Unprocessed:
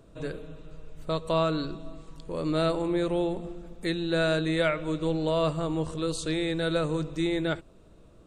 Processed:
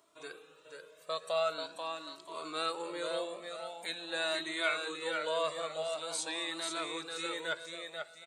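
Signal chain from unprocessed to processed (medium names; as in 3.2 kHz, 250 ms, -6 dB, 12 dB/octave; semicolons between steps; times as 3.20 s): high-pass 670 Hz 12 dB/octave; treble shelf 5.5 kHz +7 dB; on a send: feedback delay 488 ms, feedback 37%, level -5 dB; on the sum: Shepard-style flanger rising 0.45 Hz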